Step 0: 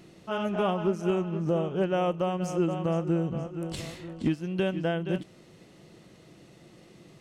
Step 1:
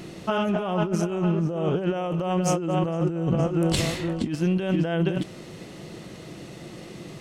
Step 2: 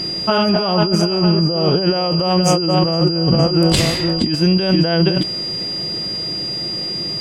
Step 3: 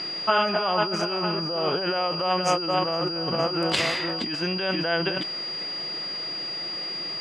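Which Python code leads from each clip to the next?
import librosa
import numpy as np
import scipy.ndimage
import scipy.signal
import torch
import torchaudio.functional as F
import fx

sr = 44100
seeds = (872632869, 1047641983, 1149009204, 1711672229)

y1 = fx.over_compress(x, sr, threshold_db=-33.0, ratio=-1.0)
y1 = y1 * librosa.db_to_amplitude(8.5)
y2 = y1 + 10.0 ** (-30.0 / 20.0) * np.sin(2.0 * np.pi * 4800.0 * np.arange(len(y1)) / sr)
y2 = y2 * librosa.db_to_amplitude(8.5)
y3 = fx.bandpass_q(y2, sr, hz=1600.0, q=0.83)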